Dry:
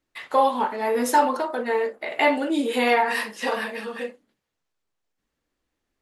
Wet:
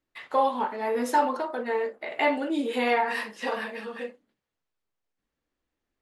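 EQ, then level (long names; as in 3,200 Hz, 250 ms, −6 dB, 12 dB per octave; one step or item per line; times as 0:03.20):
high-shelf EQ 6,700 Hz −9 dB
−4.0 dB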